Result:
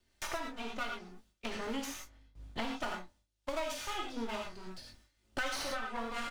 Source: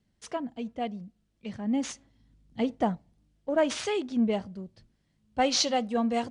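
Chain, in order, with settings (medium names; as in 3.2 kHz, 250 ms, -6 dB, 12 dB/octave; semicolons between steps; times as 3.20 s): comb filter that takes the minimum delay 3.3 ms; gate with hold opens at -54 dBFS; peaking EQ 210 Hz -12 dB 2.7 oct; doubling 22 ms -8 dB; gated-style reverb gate 130 ms flat, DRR -0.5 dB; three bands compressed up and down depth 100%; trim -5.5 dB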